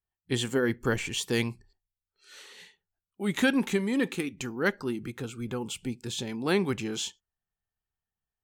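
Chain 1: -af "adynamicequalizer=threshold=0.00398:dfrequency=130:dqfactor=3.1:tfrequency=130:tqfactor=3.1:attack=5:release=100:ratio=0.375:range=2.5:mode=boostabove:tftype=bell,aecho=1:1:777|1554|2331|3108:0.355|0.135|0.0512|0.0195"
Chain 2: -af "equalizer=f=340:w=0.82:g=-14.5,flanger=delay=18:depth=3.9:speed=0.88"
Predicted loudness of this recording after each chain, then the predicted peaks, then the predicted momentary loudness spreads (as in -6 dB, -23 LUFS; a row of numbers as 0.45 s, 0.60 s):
-30.0 LUFS, -37.5 LUFS; -12.0 dBFS, -19.0 dBFS; 16 LU, 15 LU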